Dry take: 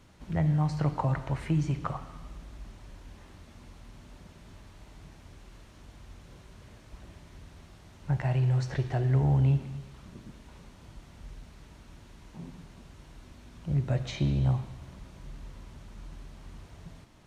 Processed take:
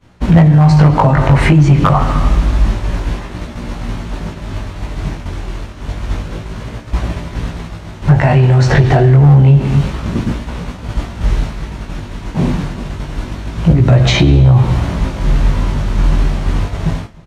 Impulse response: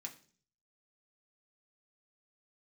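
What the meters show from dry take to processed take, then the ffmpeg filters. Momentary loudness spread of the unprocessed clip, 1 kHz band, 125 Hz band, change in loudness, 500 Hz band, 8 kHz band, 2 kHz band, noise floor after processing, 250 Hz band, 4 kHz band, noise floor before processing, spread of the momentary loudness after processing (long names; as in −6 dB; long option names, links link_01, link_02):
22 LU, +21.5 dB, +19.0 dB, +16.5 dB, +21.0 dB, can't be measured, +23.5 dB, −30 dBFS, +20.5 dB, +23.5 dB, −54 dBFS, 18 LU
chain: -filter_complex "[0:a]agate=range=-33dB:threshold=-44dB:ratio=3:detection=peak,highshelf=frequency=4500:gain=-9,acompressor=threshold=-31dB:ratio=8,flanger=delay=17:depth=4:speed=0.28,asoftclip=type=hard:threshold=-31.5dB,asplit=2[link_01][link_02];[link_02]adelay=309,volume=-25dB,highshelf=frequency=4000:gain=-6.95[link_03];[link_01][link_03]amix=inputs=2:normalize=0,alimiter=level_in=35.5dB:limit=-1dB:release=50:level=0:latency=1,volume=-1dB"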